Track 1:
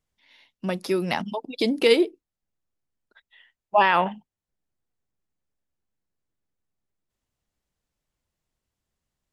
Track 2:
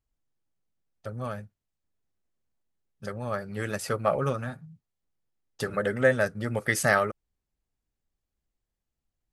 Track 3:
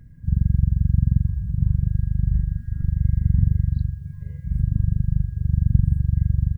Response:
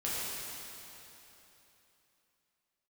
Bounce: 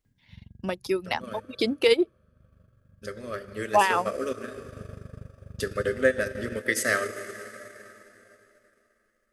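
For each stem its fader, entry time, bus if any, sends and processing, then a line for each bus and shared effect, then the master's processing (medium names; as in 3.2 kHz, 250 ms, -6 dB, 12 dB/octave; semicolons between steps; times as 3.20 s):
-2.5 dB, 0.00 s, no send, reverb removal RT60 1.5 s
-0.5 dB, 0.00 s, send -10 dB, static phaser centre 340 Hz, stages 4
-12.0 dB, 0.05 s, send -23 dB, high-pass 150 Hz 12 dB/octave; auto duck -16 dB, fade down 0.90 s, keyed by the first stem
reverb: on, RT60 3.3 s, pre-delay 4 ms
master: peaking EQ 150 Hz -11 dB 0.39 oct; transient shaper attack +2 dB, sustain -8 dB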